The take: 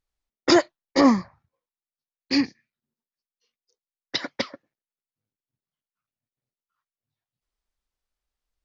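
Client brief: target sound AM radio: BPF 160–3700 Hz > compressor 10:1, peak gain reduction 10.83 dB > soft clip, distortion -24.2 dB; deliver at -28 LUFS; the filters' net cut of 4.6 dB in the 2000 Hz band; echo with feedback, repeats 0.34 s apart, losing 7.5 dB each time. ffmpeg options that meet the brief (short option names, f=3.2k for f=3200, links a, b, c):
-af "highpass=160,lowpass=3.7k,equalizer=f=2k:t=o:g=-5,aecho=1:1:340|680|1020|1360|1700:0.422|0.177|0.0744|0.0312|0.0131,acompressor=threshold=-22dB:ratio=10,asoftclip=threshold=-15dB,volume=4dB"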